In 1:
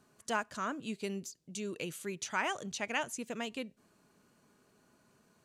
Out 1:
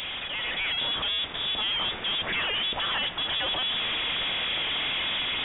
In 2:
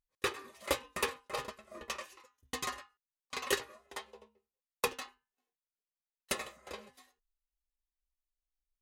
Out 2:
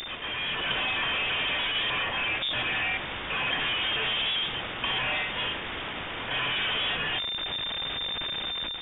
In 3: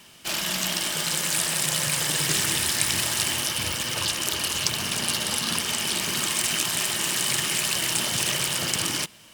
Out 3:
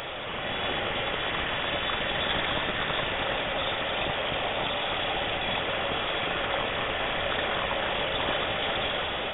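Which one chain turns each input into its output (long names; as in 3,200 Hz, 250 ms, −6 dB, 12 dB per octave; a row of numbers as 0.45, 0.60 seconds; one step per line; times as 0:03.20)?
linear delta modulator 64 kbit/s, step −21.5 dBFS
low-shelf EQ 68 Hz −7 dB
hum removal 159.3 Hz, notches 17
automatic gain control gain up to 5.5 dB
voice inversion scrambler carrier 3,600 Hz
level −5 dB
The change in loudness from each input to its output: +11.5, +11.5, −4.5 LU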